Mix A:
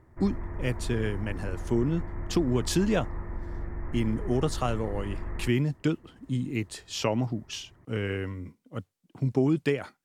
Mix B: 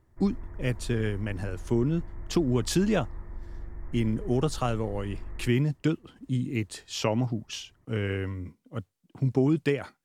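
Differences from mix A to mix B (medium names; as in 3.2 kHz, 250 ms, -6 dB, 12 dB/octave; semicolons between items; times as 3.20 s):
background -9.5 dB; master: add bass shelf 61 Hz +8.5 dB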